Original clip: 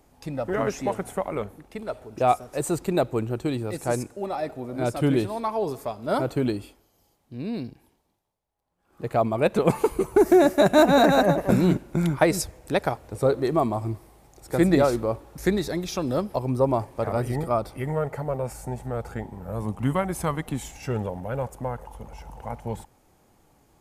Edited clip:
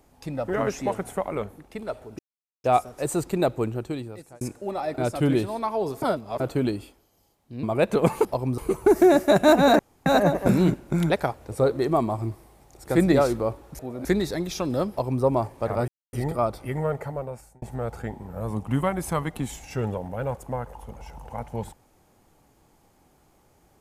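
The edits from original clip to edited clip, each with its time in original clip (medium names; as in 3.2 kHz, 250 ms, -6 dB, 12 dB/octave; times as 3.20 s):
2.19 s: insert silence 0.45 s
3.18–3.96 s: fade out
4.53–4.79 s: move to 15.42 s
5.83–6.21 s: reverse
7.44–9.26 s: delete
11.09 s: insert room tone 0.27 s
12.13–12.73 s: delete
16.27–16.60 s: copy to 9.88 s
17.25 s: insert silence 0.25 s
18.08–18.74 s: fade out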